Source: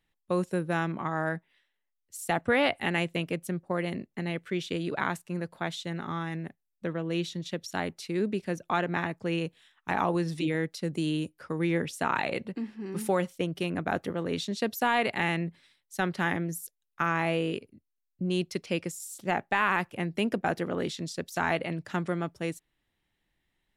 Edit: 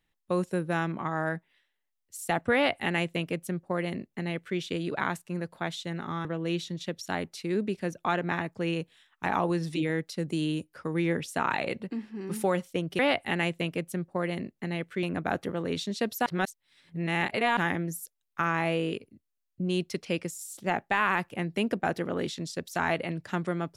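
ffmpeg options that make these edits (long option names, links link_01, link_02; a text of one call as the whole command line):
ffmpeg -i in.wav -filter_complex "[0:a]asplit=6[link_01][link_02][link_03][link_04][link_05][link_06];[link_01]atrim=end=6.252[link_07];[link_02]atrim=start=6.898:end=13.642[link_08];[link_03]atrim=start=2.538:end=4.582[link_09];[link_04]atrim=start=13.638:end=14.872[link_10];[link_05]atrim=start=14.868:end=16.182,asetpts=PTS-STARTPTS,areverse[link_11];[link_06]atrim=start=16.178[link_12];[link_07][link_08]acrossfade=duration=0.004:curve1=hsin:curve2=hsin[link_13];[link_13][link_09]acrossfade=duration=0.004:curve1=hsin:curve2=hsin[link_14];[link_14][link_10]acrossfade=duration=0.004:curve1=hsin:curve2=hsin[link_15];[link_15][link_11]acrossfade=duration=0.004:curve1=hsin:curve2=hsin[link_16];[link_16][link_12]acrossfade=duration=0.004:curve1=hsin:curve2=hsin" out.wav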